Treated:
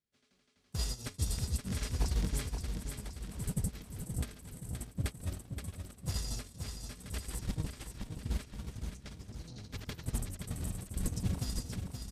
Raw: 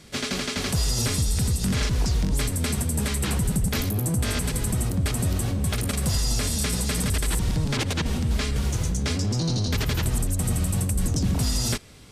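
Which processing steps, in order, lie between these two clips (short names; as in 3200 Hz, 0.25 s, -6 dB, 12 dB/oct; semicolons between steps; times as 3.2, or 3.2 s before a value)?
gate -20 dBFS, range -45 dB; feedback echo 0.524 s, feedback 51%, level -6.5 dB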